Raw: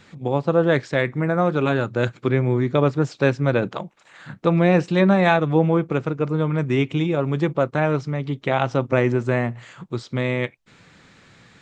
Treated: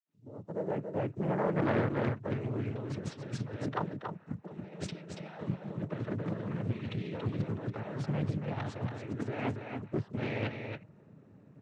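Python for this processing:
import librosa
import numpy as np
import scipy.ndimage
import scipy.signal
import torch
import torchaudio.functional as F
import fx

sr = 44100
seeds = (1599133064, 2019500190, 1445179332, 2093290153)

y = fx.fade_in_head(x, sr, length_s=3.43)
y = fx.highpass(y, sr, hz=160.0, slope=12, at=(9.19, 9.97))
y = fx.env_lowpass(y, sr, base_hz=410.0, full_db=-14.0)
y = fx.over_compress(y, sr, threshold_db=-26.0, ratio=-0.5)
y = fx.quant_companded(y, sr, bits=8)
y = fx.noise_vocoder(y, sr, seeds[0], bands=12)
y = y + 10.0 ** (-6.0 / 20.0) * np.pad(y, (int(281 * sr / 1000.0), 0))[:len(y)]
y = fx.doppler_dist(y, sr, depth_ms=0.56)
y = y * librosa.db_to_amplitude(-7.5)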